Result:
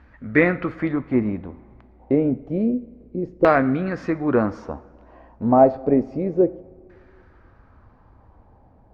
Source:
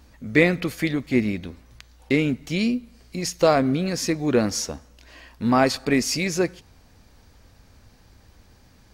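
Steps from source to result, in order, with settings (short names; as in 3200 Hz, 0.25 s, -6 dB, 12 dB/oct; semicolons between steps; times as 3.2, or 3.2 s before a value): LFO low-pass saw down 0.29 Hz 390–1800 Hz; two-slope reverb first 0.51 s, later 2.5 s, from -15 dB, DRR 13.5 dB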